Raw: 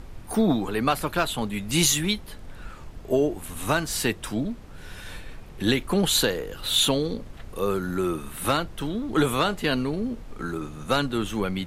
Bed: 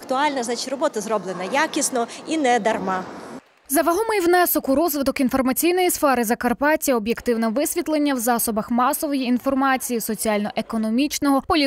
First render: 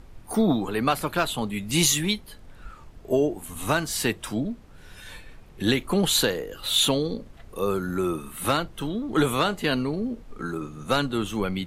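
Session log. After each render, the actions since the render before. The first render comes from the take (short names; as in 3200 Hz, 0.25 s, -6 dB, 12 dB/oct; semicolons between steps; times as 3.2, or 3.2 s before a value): noise print and reduce 6 dB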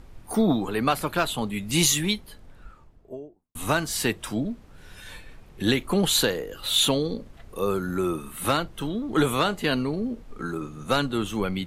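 2.1–3.55 studio fade out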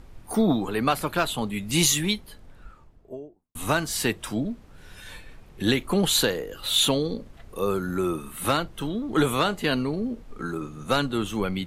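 nothing audible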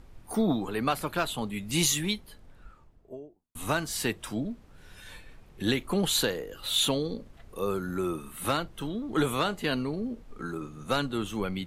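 gain -4.5 dB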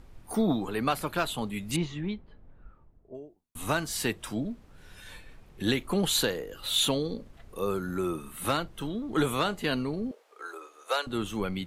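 1.76–3.15 tape spacing loss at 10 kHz 45 dB; 10.11–11.07 steep high-pass 440 Hz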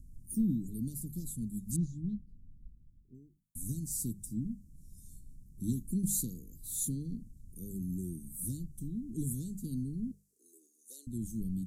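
inverse Chebyshev band-stop 740–2400 Hz, stop band 70 dB; notches 50/100/150/200 Hz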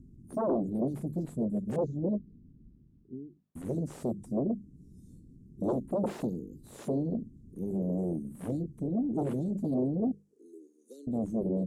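sine folder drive 13 dB, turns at -20.5 dBFS; band-pass 390 Hz, Q 1.3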